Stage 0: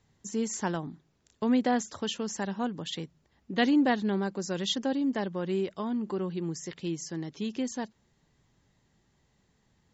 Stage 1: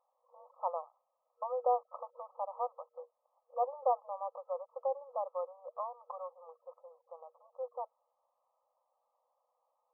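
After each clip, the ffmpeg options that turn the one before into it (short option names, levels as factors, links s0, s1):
-af "afftfilt=real='re*between(b*sr/4096,480,1300)':imag='im*between(b*sr/4096,480,1300)':win_size=4096:overlap=0.75"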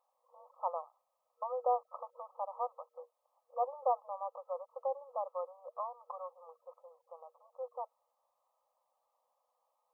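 -af "tiltshelf=f=970:g=-3.5"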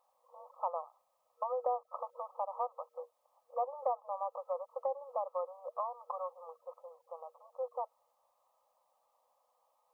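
-af "acompressor=threshold=0.0126:ratio=2.5,volume=1.78"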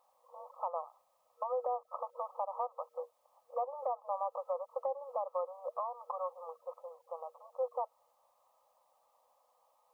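-af "alimiter=level_in=1.68:limit=0.0631:level=0:latency=1:release=242,volume=0.596,volume=1.5"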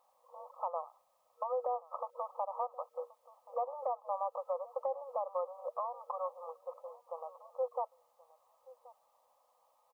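-af "aecho=1:1:1078:0.0891"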